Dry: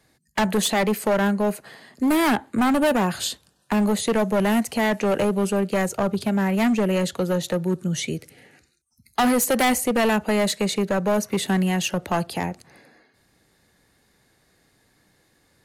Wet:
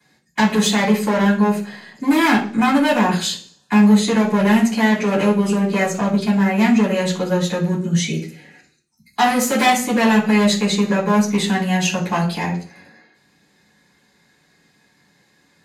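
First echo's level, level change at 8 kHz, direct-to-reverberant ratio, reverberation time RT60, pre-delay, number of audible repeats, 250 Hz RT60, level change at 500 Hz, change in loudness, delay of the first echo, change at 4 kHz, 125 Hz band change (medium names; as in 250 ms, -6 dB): no echo, +2.5 dB, -15.0 dB, 0.40 s, 3 ms, no echo, 0.55 s, +1.5 dB, +5.0 dB, no echo, +5.0 dB, +6.0 dB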